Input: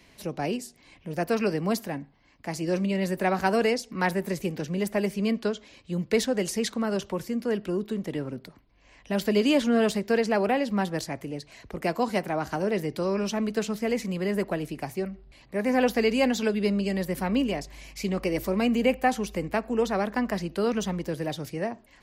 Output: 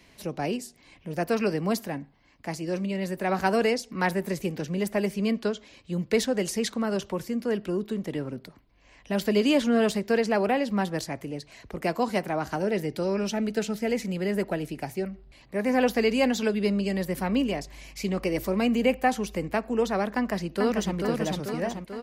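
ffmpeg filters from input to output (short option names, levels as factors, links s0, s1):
-filter_complex "[0:a]asettb=1/sr,asplit=3[s0][s1][s2];[s0]atrim=end=12.584[s3];[s1]atrim=start=12.58:end=15.05,asetpts=PTS-STARTPTS,afade=t=in:d=0.004:c=qsin,afade=t=out:st=2.466:d=0.004:c=qsin,asuperstop=centerf=1100:order=4:qfactor=6.4[s4];[s2]atrim=start=15.046[s5];[s3][s4]acrossfade=d=0.004:c1=hsin:c2=qsin[s6];[s6][s5]acrossfade=d=0.004:c1=qsin:c2=hsin,asplit=2[s7][s8];[s8]afade=t=in:st=20.11:d=0.01,afade=t=out:st=20.96:d=0.01,aecho=0:1:440|880|1320|1760|2200|2640|3080|3520|3960:0.668344|0.401006|0.240604|0.144362|0.0866174|0.0519704|0.0311823|0.0187094|0.0112256[s9];[s7][s9]amix=inputs=2:normalize=0,asplit=3[s10][s11][s12];[s10]atrim=end=2.552[s13];[s11]atrim=start=2.548:end=3.292,asetpts=PTS-STARTPTS,volume=0.708[s14];[s12]atrim=start=3.288[s15];[s13][s14]acrossfade=d=0.004:c1=hsin:c2=hsin[s16];[s16][s15]acrossfade=d=0.004:c1=hsin:c2=hsin"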